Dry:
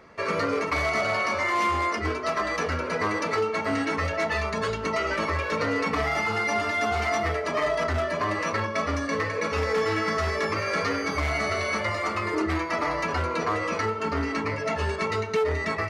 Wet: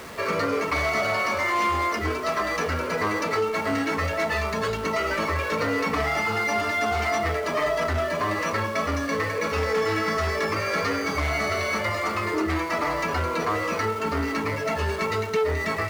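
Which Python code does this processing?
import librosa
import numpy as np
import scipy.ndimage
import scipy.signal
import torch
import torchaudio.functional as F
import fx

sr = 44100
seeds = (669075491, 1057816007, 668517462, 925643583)

y = x + 0.5 * 10.0 ** (-35.5 / 20.0) * np.sign(x)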